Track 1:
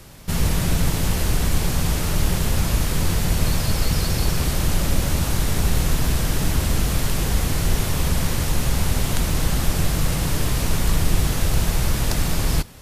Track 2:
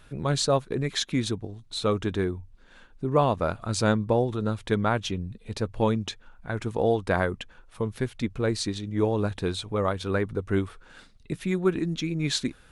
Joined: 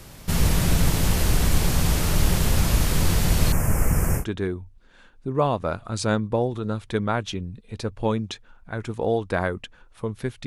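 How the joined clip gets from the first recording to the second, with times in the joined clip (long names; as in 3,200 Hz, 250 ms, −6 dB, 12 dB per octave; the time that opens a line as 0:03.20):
track 1
0:03.52–0:04.25: Butterworth band-reject 3,900 Hz, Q 0.8
0:04.20: continue with track 2 from 0:01.97, crossfade 0.10 s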